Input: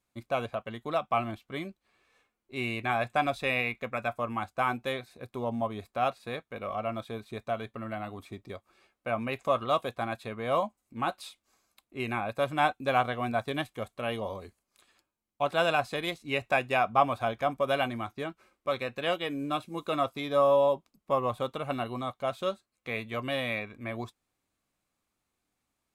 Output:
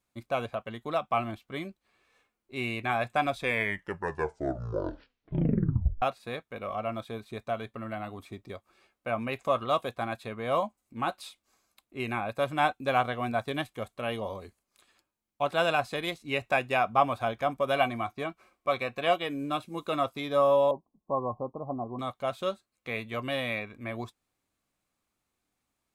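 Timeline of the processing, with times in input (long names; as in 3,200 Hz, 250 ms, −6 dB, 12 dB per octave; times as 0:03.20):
0:03.32: tape stop 2.70 s
0:17.76–0:19.23: hollow resonant body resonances 710/1,100/2,300 Hz, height 10 dB
0:20.71–0:21.99: Chebyshev low-pass with heavy ripple 1,100 Hz, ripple 3 dB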